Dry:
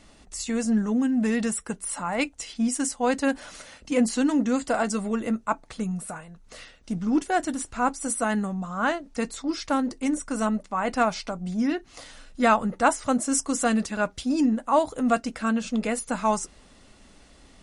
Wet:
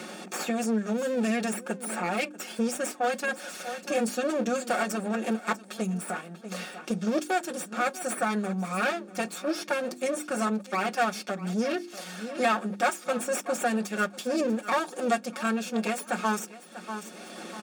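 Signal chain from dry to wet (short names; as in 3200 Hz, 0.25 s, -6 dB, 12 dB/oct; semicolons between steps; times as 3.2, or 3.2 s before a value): minimum comb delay 5.5 ms; brick-wall FIR high-pass 170 Hz; notches 50/100/150/200/250/300/350 Hz; notch comb 1000 Hz; feedback echo 0.641 s, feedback 16%, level -19.5 dB; three-band squash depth 70%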